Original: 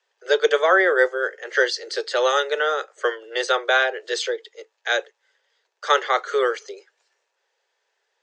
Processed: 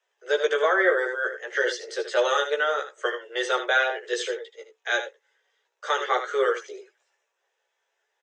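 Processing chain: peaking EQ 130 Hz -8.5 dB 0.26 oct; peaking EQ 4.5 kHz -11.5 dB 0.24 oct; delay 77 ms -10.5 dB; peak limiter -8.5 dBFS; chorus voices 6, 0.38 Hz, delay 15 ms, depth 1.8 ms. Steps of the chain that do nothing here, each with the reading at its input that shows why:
peaking EQ 130 Hz: input has nothing below 320 Hz

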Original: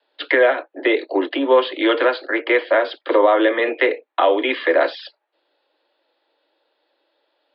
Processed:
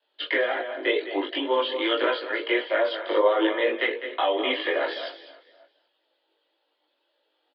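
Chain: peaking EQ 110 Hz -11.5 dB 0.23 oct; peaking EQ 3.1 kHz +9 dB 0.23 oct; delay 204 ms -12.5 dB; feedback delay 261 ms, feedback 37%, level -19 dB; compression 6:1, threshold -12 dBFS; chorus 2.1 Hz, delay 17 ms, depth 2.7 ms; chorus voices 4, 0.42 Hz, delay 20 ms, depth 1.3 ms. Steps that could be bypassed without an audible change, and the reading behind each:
peaking EQ 110 Hz: input has nothing below 230 Hz

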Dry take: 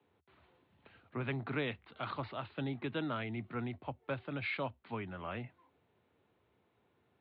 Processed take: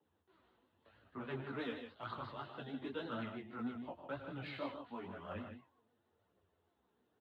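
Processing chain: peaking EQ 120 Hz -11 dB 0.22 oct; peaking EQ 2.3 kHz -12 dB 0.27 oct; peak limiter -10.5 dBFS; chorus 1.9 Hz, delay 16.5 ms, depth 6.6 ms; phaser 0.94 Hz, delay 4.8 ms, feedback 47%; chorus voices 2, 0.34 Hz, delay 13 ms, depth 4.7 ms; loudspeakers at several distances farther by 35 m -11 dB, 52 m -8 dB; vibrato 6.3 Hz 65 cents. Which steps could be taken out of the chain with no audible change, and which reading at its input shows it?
peak limiter -10.5 dBFS: peak at its input -25.0 dBFS

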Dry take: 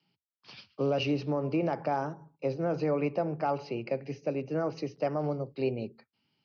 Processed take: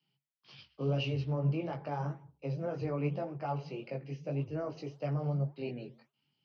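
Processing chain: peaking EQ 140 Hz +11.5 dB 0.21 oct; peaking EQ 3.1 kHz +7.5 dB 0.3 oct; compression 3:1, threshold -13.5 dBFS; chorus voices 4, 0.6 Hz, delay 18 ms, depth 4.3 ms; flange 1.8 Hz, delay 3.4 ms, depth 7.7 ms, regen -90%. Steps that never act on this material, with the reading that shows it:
compression, threshold -13.5 dBFS: peak at its input -16.0 dBFS

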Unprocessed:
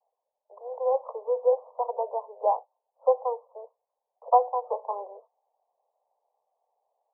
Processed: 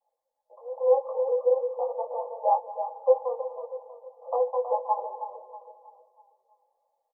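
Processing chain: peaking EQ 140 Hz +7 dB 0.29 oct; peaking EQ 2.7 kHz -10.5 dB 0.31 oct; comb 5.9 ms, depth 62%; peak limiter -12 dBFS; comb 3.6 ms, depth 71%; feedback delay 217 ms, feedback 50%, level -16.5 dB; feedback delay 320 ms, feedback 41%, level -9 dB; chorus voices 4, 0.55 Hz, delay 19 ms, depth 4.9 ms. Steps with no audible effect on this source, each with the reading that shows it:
peaking EQ 140 Hz: input has nothing below 380 Hz; peaking EQ 2.7 kHz: input has nothing above 1.1 kHz

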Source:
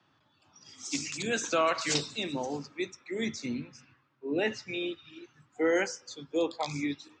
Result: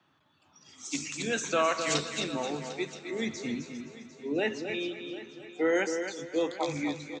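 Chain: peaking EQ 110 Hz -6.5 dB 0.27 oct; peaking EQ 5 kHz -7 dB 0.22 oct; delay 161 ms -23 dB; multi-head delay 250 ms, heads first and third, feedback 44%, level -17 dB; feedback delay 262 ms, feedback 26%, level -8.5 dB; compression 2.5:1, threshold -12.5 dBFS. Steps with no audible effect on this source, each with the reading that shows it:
compression, threshold -12.5 dBFS: peak at its input -15.0 dBFS

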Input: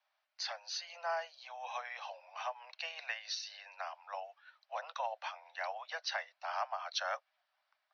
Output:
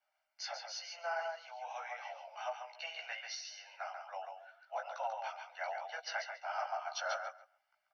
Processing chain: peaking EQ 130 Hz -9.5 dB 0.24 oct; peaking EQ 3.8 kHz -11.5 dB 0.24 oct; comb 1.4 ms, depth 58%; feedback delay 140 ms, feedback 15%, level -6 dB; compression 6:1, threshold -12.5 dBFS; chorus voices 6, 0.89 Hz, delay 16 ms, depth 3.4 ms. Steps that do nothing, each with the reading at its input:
peaking EQ 130 Hz: input has nothing below 450 Hz; compression, threshold -12.5 dBFS: peak at its input -21.5 dBFS

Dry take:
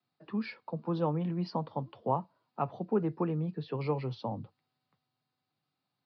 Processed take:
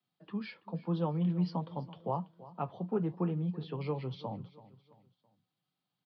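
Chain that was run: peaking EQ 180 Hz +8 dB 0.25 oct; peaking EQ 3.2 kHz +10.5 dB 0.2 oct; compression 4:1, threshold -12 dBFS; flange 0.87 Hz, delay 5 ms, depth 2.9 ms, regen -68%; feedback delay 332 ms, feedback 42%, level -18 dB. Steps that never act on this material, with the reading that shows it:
compression, threshold -12 dBFS: peak at its input -15.5 dBFS

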